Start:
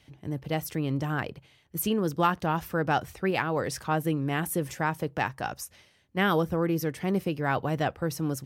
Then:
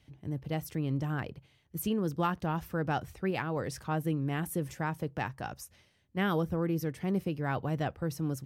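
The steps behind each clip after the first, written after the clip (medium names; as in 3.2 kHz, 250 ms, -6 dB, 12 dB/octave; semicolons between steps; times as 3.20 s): bass shelf 260 Hz +7.5 dB; trim -7.5 dB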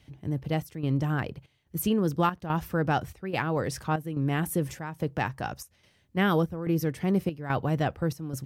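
square tremolo 1.2 Hz, depth 65%, duty 75%; trim +5.5 dB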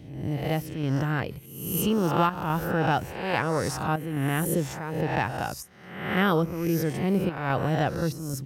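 reverse spectral sustain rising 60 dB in 0.84 s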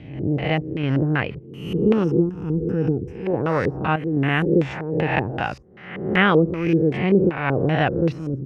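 LFO low-pass square 2.6 Hz 410–2500 Hz; time-frequency box 2.04–3.27 s, 510–4900 Hz -20 dB; trim +4.5 dB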